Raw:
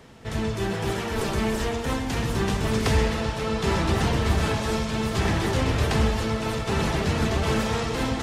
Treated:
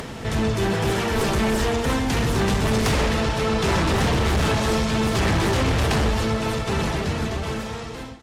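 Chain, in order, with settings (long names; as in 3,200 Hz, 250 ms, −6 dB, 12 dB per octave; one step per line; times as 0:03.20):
fade-out on the ending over 2.48 s
sine wavefolder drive 8 dB, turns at −11.5 dBFS
upward compression, threshold −20 dBFS
level −5 dB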